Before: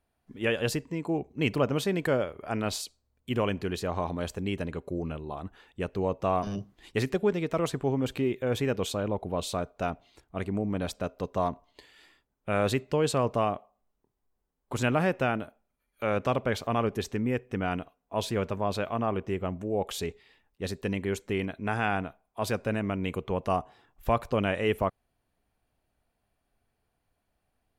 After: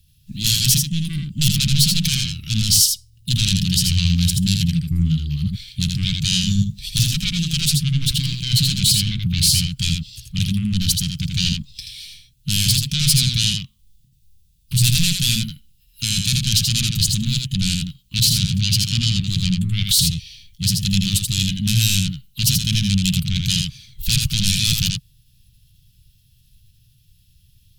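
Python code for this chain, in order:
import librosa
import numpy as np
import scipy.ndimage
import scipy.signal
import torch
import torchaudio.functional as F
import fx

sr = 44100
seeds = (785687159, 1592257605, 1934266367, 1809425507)

p1 = fx.fold_sine(x, sr, drive_db=16, ceiling_db=-12.5)
p2 = scipy.signal.sosfilt(scipy.signal.cheby1(3, 1.0, [140.0, 2800.0], 'bandstop', fs=sr, output='sos'), p1)
p3 = fx.formant_shift(p2, sr, semitones=3)
p4 = p3 + fx.echo_single(p3, sr, ms=81, db=-4.5, dry=0)
y = p4 * 10.0 ** (4.0 / 20.0)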